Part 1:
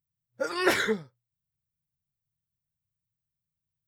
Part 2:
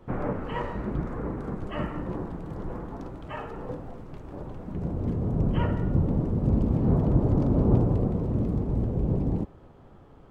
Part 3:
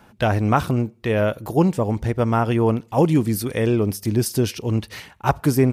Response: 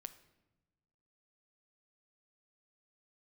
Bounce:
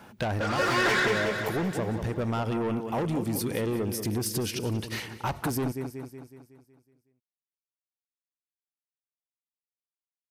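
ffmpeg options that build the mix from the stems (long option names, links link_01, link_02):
-filter_complex "[0:a]equalizer=frequency=14000:width_type=o:width=1.7:gain=-12.5,asplit=2[link_01][link_02];[link_02]highpass=frequency=720:poles=1,volume=27dB,asoftclip=type=tanh:threshold=-8dB[link_03];[link_01][link_03]amix=inputs=2:normalize=0,lowpass=frequency=5700:poles=1,volume=-6dB,volume=-1.5dB,asplit=2[link_04][link_05];[link_05]volume=-4dB[link_06];[2:a]highpass=frequency=100:poles=1,volume=1.5dB,asplit=2[link_07][link_08];[link_08]volume=-18dB[link_09];[link_04][link_07]amix=inputs=2:normalize=0,asoftclip=type=tanh:threshold=-18dB,acompressor=threshold=-25dB:ratio=6,volume=0dB[link_10];[link_06][link_09]amix=inputs=2:normalize=0,aecho=0:1:185|370|555|740|925|1110|1295|1480:1|0.53|0.281|0.149|0.0789|0.0418|0.0222|0.0117[link_11];[link_10][link_11]amix=inputs=2:normalize=0,acompressor=threshold=-29dB:ratio=1.5"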